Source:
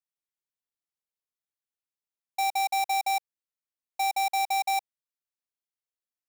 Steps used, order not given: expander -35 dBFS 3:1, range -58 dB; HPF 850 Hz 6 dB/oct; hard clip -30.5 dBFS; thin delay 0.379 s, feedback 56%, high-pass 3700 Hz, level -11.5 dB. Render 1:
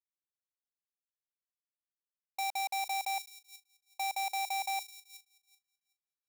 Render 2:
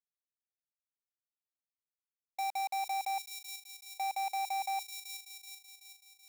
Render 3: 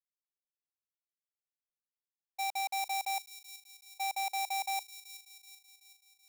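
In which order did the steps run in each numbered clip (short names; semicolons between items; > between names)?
thin delay > expander > hard clip > HPF; HPF > expander > thin delay > hard clip; hard clip > HPF > expander > thin delay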